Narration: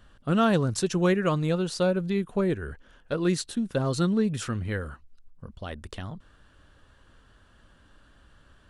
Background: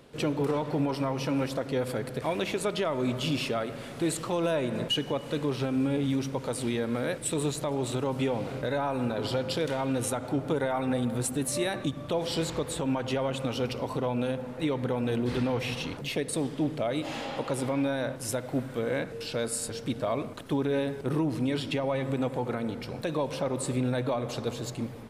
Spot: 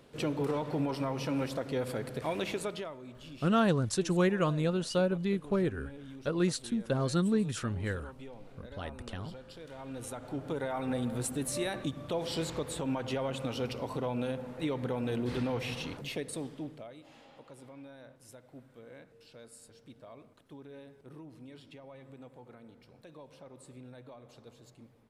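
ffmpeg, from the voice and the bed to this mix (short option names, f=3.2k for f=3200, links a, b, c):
-filter_complex "[0:a]adelay=3150,volume=-4dB[a];[1:a]volume=11dB,afade=t=out:st=2.51:d=0.49:silence=0.16788,afade=t=in:st=9.62:d=1.36:silence=0.177828,afade=t=out:st=15.93:d=1.03:silence=0.141254[b];[a][b]amix=inputs=2:normalize=0"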